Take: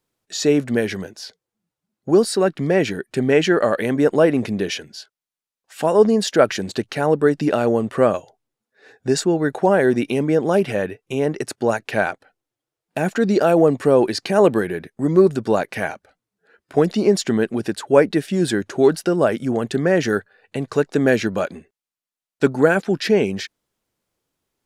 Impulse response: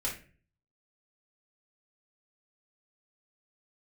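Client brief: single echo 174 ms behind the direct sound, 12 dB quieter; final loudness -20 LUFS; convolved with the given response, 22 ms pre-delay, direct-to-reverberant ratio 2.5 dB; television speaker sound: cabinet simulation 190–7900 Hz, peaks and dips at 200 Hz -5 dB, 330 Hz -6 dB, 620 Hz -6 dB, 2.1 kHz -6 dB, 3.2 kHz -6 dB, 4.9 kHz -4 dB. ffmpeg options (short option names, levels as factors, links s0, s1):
-filter_complex "[0:a]aecho=1:1:174:0.251,asplit=2[s0][s1];[1:a]atrim=start_sample=2205,adelay=22[s2];[s1][s2]afir=irnorm=-1:irlink=0,volume=0.473[s3];[s0][s3]amix=inputs=2:normalize=0,highpass=f=190:w=0.5412,highpass=f=190:w=1.3066,equalizer=f=200:t=q:w=4:g=-5,equalizer=f=330:t=q:w=4:g=-6,equalizer=f=620:t=q:w=4:g=-6,equalizer=f=2100:t=q:w=4:g=-6,equalizer=f=3200:t=q:w=4:g=-6,equalizer=f=4900:t=q:w=4:g=-4,lowpass=f=7900:w=0.5412,lowpass=f=7900:w=1.3066,volume=1.06"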